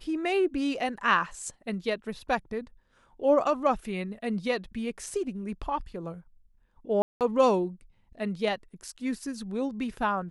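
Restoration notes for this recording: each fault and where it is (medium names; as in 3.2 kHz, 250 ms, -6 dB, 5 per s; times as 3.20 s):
7.02–7.21 s: dropout 188 ms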